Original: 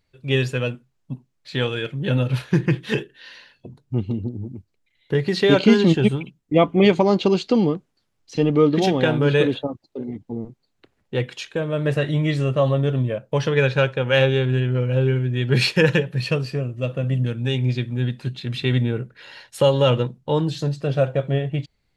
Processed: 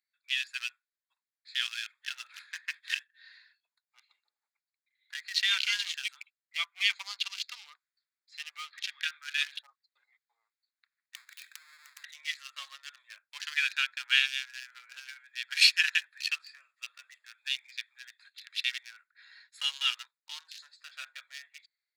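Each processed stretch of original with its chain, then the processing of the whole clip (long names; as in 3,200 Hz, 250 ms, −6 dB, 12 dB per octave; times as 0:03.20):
0:08.72–0:09.38: high-pass filter 1,300 Hz 24 dB per octave + high-frequency loss of the air 110 metres
0:11.15–0:12.04: each half-wave held at its own peak + high-pass filter 170 Hz 24 dB per octave + downward compressor 8 to 1, threshold −32 dBFS
whole clip: adaptive Wiener filter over 15 samples; Bessel high-pass filter 2,800 Hz, order 6; automatic gain control gain up to 4 dB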